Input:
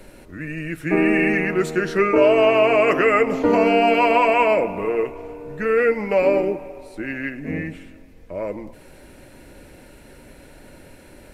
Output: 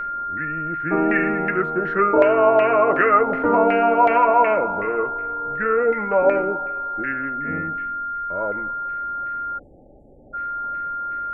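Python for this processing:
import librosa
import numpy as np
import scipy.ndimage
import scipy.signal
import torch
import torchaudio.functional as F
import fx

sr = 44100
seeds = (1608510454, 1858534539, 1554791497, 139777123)

y = fx.filter_lfo_lowpass(x, sr, shape='saw_down', hz=2.7, low_hz=770.0, high_hz=1900.0, q=3.1)
y = y + 10.0 ** (-21.0 / 20.0) * np.sin(2.0 * np.pi * 1400.0 * np.arange(len(y)) / sr)
y = fx.spec_erase(y, sr, start_s=9.58, length_s=0.76, low_hz=880.0, high_hz=6700.0)
y = F.gain(torch.from_numpy(y), -3.5).numpy()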